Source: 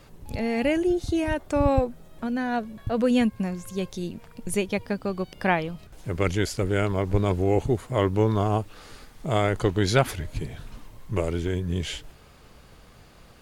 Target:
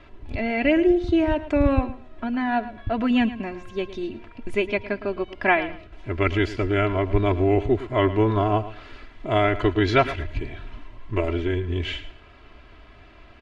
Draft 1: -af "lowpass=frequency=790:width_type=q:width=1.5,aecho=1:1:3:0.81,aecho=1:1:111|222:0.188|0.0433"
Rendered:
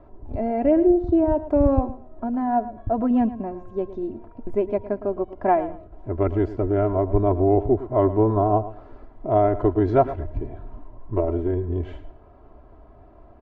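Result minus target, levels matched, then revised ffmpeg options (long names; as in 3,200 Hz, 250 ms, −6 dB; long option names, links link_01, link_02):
2,000 Hz band −17.5 dB
-af "lowpass=frequency=2600:width_type=q:width=1.5,aecho=1:1:3:0.81,aecho=1:1:111|222:0.188|0.0433"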